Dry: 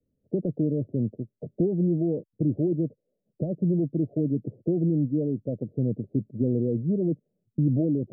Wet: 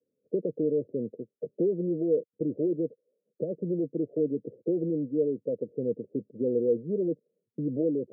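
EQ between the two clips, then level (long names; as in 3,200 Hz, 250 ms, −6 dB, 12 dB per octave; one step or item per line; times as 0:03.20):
high-pass filter 200 Hz 12 dB per octave
low-pass with resonance 480 Hz, resonance Q 5.5
−7.5 dB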